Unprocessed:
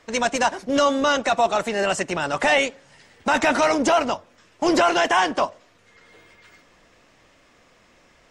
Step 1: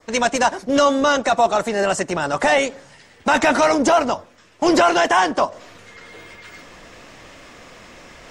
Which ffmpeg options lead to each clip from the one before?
ffmpeg -i in.wav -af "areverse,acompressor=mode=upward:threshold=-35dB:ratio=2.5,areverse,adynamicequalizer=threshold=0.01:dfrequency=2700:dqfactor=1.4:tfrequency=2700:tqfactor=1.4:attack=5:release=100:ratio=0.375:range=3:mode=cutabove:tftype=bell,volume=3.5dB" out.wav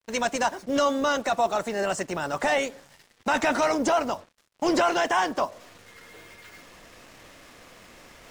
ffmpeg -i in.wav -af "acrusher=bits=6:mix=0:aa=0.5,volume=-7.5dB" out.wav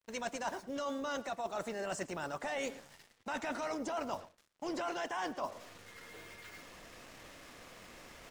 ffmpeg -i in.wav -filter_complex "[0:a]areverse,acompressor=threshold=-31dB:ratio=10,areverse,asplit=2[link_01][link_02];[link_02]adelay=110.8,volume=-17dB,highshelf=frequency=4000:gain=-2.49[link_03];[link_01][link_03]amix=inputs=2:normalize=0,volume=-4dB" out.wav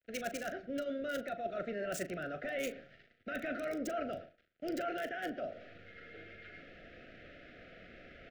ffmpeg -i in.wav -filter_complex "[0:a]acrossover=split=190|1400|3200[link_01][link_02][link_03][link_04];[link_04]acrusher=bits=6:mix=0:aa=0.000001[link_05];[link_01][link_02][link_03][link_05]amix=inputs=4:normalize=0,asuperstop=centerf=970:order=12:qfactor=1.7,asplit=2[link_06][link_07];[link_07]adelay=39,volume=-11.5dB[link_08];[link_06][link_08]amix=inputs=2:normalize=0,volume=1dB" out.wav

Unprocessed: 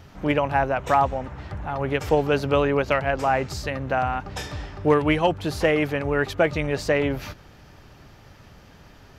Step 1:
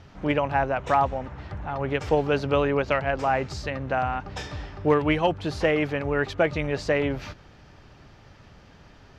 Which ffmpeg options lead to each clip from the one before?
ffmpeg -i in.wav -af "lowpass=6300,volume=-2dB" out.wav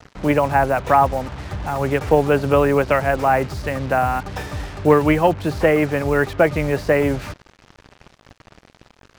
ffmpeg -i in.wav -filter_complex "[0:a]equalizer=frequency=3200:width_type=o:width=0.34:gain=-2.5,acrossover=split=190|970|2500[link_01][link_02][link_03][link_04];[link_04]acompressor=threshold=-50dB:ratio=6[link_05];[link_01][link_02][link_03][link_05]amix=inputs=4:normalize=0,acrusher=bits=6:mix=0:aa=0.5,volume=7dB" out.wav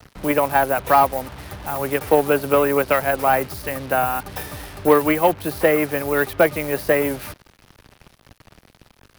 ffmpeg -i in.wav -filter_complex "[0:a]acrossover=split=220|2600[link_01][link_02][link_03];[link_01]acompressor=threshold=-36dB:ratio=6[link_04];[link_02]aeval=exprs='0.708*(cos(1*acos(clip(val(0)/0.708,-1,1)))-cos(1*PI/2))+0.0316*(cos(7*acos(clip(val(0)/0.708,-1,1)))-cos(7*PI/2))':channel_layout=same[link_05];[link_03]aexciter=amount=4.6:drive=6.3:freq=9600[link_06];[link_04][link_05][link_06]amix=inputs=3:normalize=0" out.wav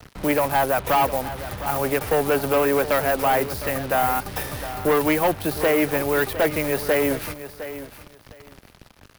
ffmpeg -i in.wav -filter_complex "[0:a]asplit=2[link_01][link_02];[link_02]acrusher=bits=5:dc=4:mix=0:aa=0.000001,volume=-8.5dB[link_03];[link_01][link_03]amix=inputs=2:normalize=0,asoftclip=type=tanh:threshold=-15dB,aecho=1:1:709|1418:0.224|0.0403" out.wav

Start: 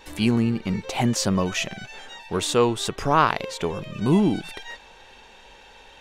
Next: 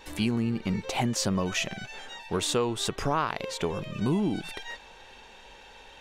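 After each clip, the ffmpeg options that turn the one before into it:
ffmpeg -i in.wav -af "acompressor=threshold=-22dB:ratio=4,volume=-1.5dB" out.wav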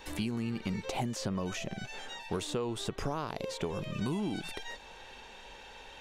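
ffmpeg -i in.wav -filter_complex "[0:a]acrossover=split=780|4100[link_01][link_02][link_03];[link_01]acompressor=threshold=-32dB:ratio=4[link_04];[link_02]acompressor=threshold=-44dB:ratio=4[link_05];[link_03]acompressor=threshold=-46dB:ratio=4[link_06];[link_04][link_05][link_06]amix=inputs=3:normalize=0" out.wav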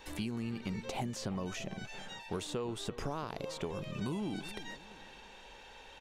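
ffmpeg -i in.wav -filter_complex "[0:a]asplit=2[link_01][link_02];[link_02]adelay=343,lowpass=frequency=2000:poles=1,volume=-14.5dB,asplit=2[link_03][link_04];[link_04]adelay=343,lowpass=frequency=2000:poles=1,volume=0.37,asplit=2[link_05][link_06];[link_06]adelay=343,lowpass=frequency=2000:poles=1,volume=0.37[link_07];[link_01][link_03][link_05][link_07]amix=inputs=4:normalize=0,volume=-3.5dB" out.wav

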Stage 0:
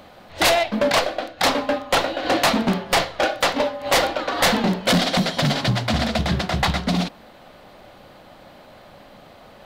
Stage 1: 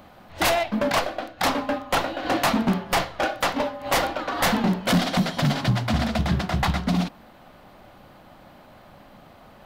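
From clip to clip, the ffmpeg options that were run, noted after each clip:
ffmpeg -i in.wav -af "equalizer=frequency=500:width_type=o:width=1:gain=-6,equalizer=frequency=2000:width_type=o:width=1:gain=-3,equalizer=frequency=4000:width_type=o:width=1:gain=-6,equalizer=frequency=8000:width_type=o:width=1:gain=-4" out.wav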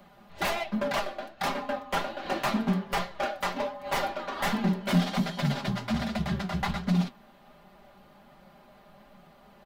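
ffmpeg -i in.wav -filter_complex "[0:a]aecho=1:1:5:0.7,flanger=delay=5.4:depth=6.1:regen=64:speed=1.3:shape=sinusoidal,acrossover=split=260|3200[link_01][link_02][link_03];[link_03]asoftclip=type=tanh:threshold=-32dB[link_04];[link_01][link_02][link_04]amix=inputs=3:normalize=0,volume=-4dB" out.wav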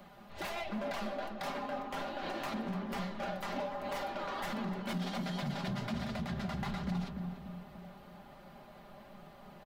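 ffmpeg -i in.wav -filter_complex "[0:a]acompressor=threshold=-29dB:ratio=6,alimiter=level_in=6.5dB:limit=-24dB:level=0:latency=1:release=61,volume=-6.5dB,asplit=2[link_01][link_02];[link_02]adelay=291,lowpass=frequency=980:poles=1,volume=-4dB,asplit=2[link_03][link_04];[link_04]adelay=291,lowpass=frequency=980:poles=1,volume=0.53,asplit=2[link_05][link_06];[link_06]adelay=291,lowpass=frequency=980:poles=1,volume=0.53,asplit=2[link_07][link_08];[link_08]adelay=291,lowpass=frequency=980:poles=1,volume=0.53,asplit=2[link_09][link_10];[link_10]adelay=291,lowpass=frequency=980:poles=1,volume=0.53,asplit=2[link_11][link_12];[link_12]adelay=291,lowpass=frequency=980:poles=1,volume=0.53,asplit=2[link_13][link_14];[link_14]adelay=291,lowpass=frequency=980:poles=1,volume=0.53[link_15];[link_01][link_03][link_05][link_07][link_09][link_11][link_13][link_15]amix=inputs=8:normalize=0" out.wav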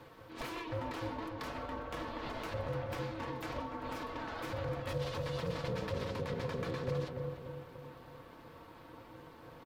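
ffmpeg -i in.wav -filter_complex "[0:a]acrossover=split=380[link_01][link_02];[link_02]acompressor=threshold=-40dB:ratio=6[link_03];[link_01][link_03]amix=inputs=2:normalize=0,aeval=exprs='val(0)*sin(2*PI*320*n/s)':channel_layout=same,volume=3dB" out.wav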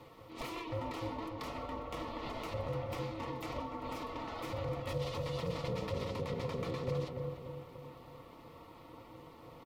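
ffmpeg -i in.wav -af "asuperstop=centerf=1600:order=4:qfactor=4.2" out.wav

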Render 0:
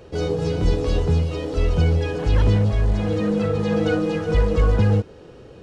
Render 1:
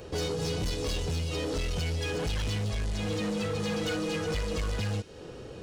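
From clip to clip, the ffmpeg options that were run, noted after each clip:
ffmpeg -i in.wav -filter_complex "[0:a]acrossover=split=2000[link_01][link_02];[link_01]acompressor=threshold=-27dB:ratio=6[link_03];[link_03][link_02]amix=inputs=2:normalize=0,highshelf=frequency=4200:gain=8.5,asoftclip=type=hard:threshold=-27dB" out.wav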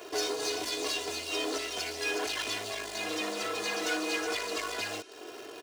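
ffmpeg -i in.wav -filter_complex "[0:a]asplit=2[link_01][link_02];[link_02]acrusher=bits=4:dc=4:mix=0:aa=0.000001,volume=-8dB[link_03];[link_01][link_03]amix=inputs=2:normalize=0,highpass=480,aecho=1:1:2.9:0.9" out.wav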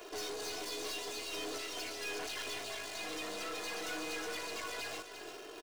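ffmpeg -i in.wav -filter_complex "[0:a]highpass=frequency=220:poles=1,aeval=exprs='(tanh(56.2*val(0)+0.3)-tanh(0.3))/56.2':channel_layout=same,asplit=2[link_01][link_02];[link_02]aecho=0:1:347:0.355[link_03];[link_01][link_03]amix=inputs=2:normalize=0,volume=-2.5dB" out.wav

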